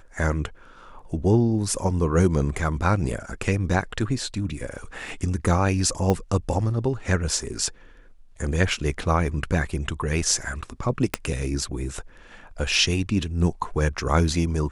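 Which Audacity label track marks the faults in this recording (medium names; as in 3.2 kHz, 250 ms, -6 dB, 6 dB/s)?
6.100000	6.100000	pop -10 dBFS
11.140000	11.140000	pop -6 dBFS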